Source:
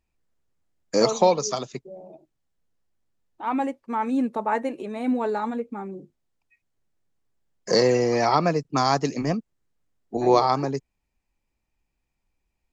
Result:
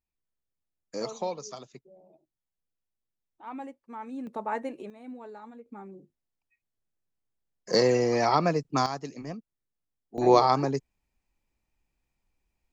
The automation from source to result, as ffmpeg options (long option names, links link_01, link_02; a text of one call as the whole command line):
ffmpeg -i in.wav -af "asetnsamples=nb_out_samples=441:pad=0,asendcmd='4.27 volume volume -7dB;4.9 volume volume -18.5dB;5.66 volume volume -10dB;7.74 volume volume -3dB;8.86 volume volume -13dB;10.18 volume volume -1dB',volume=-14dB" out.wav